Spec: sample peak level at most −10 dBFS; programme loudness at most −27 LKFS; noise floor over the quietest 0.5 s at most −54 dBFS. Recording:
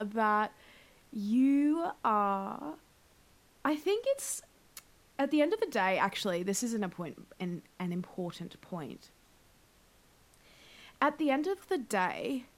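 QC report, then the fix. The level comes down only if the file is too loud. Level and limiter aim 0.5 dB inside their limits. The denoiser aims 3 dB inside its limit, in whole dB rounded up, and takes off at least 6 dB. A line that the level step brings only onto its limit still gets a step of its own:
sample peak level −13.5 dBFS: in spec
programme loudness −32.5 LKFS: in spec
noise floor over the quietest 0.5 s −64 dBFS: in spec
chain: no processing needed

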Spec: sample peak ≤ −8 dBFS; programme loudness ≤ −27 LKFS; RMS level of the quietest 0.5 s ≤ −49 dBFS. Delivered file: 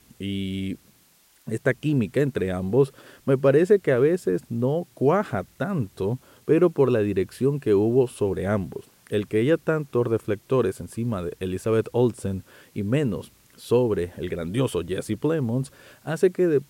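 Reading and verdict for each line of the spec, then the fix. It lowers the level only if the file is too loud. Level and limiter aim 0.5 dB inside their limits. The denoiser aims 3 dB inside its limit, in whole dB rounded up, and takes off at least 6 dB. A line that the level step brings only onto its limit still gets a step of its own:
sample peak −7.0 dBFS: out of spec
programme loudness −24.0 LKFS: out of spec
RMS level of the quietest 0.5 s −59 dBFS: in spec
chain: level −3.5 dB

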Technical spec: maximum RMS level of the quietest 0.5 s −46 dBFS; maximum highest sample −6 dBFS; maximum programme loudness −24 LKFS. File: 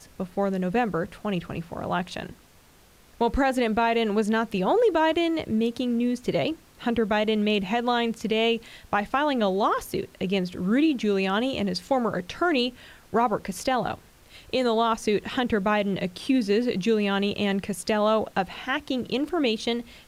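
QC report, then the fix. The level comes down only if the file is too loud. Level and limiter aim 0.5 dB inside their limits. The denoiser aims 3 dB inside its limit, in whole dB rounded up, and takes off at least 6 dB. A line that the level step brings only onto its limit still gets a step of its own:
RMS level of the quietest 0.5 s −55 dBFS: in spec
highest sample −12.0 dBFS: in spec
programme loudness −25.5 LKFS: in spec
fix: no processing needed

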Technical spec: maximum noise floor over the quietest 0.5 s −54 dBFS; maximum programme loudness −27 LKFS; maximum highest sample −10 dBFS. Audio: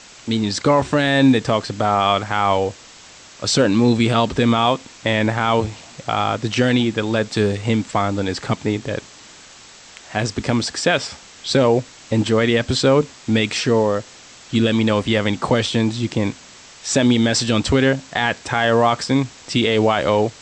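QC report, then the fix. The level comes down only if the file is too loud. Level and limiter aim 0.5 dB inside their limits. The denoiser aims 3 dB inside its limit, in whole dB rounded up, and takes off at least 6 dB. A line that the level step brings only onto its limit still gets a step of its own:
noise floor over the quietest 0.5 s −43 dBFS: out of spec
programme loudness −18.5 LKFS: out of spec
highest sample −4.5 dBFS: out of spec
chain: broadband denoise 6 dB, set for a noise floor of −43 dBFS
level −9 dB

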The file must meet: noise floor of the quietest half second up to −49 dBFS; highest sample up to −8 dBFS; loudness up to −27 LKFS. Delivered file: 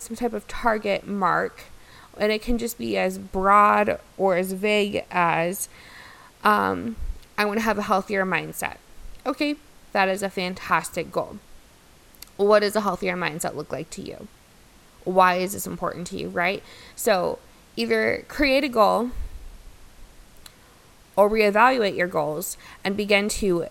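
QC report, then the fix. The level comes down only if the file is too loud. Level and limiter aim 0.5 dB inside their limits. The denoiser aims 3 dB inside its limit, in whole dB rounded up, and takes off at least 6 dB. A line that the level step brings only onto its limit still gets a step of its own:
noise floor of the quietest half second −52 dBFS: in spec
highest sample −4.5 dBFS: out of spec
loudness −23.0 LKFS: out of spec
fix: level −4.5 dB

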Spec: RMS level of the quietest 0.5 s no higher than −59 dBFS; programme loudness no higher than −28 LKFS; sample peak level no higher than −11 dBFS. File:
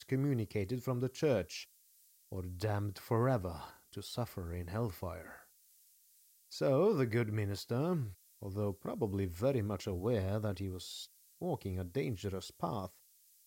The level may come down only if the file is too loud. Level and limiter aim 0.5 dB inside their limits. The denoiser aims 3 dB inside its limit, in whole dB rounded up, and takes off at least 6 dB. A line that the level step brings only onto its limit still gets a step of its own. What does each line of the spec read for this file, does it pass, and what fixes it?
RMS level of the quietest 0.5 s −67 dBFS: in spec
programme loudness −37.0 LKFS: in spec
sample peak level −20.0 dBFS: in spec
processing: no processing needed

